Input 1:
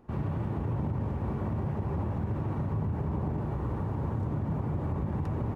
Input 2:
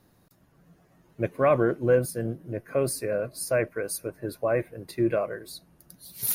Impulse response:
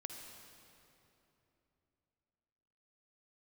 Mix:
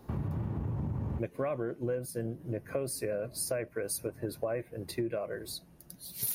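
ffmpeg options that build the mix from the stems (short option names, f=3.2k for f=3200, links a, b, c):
-filter_complex "[0:a]acrossover=split=310[a][b];[b]acompressor=threshold=-44dB:ratio=6[c];[a][c]amix=inputs=2:normalize=0,volume=1.5dB[d];[1:a]equalizer=f=1.3k:w=1.5:g=-4,volume=1dB,asplit=2[e][f];[f]apad=whole_len=244811[g];[d][g]sidechaincompress=threshold=-50dB:ratio=8:attack=16:release=902[h];[h][e]amix=inputs=2:normalize=0,acompressor=threshold=-30dB:ratio=10"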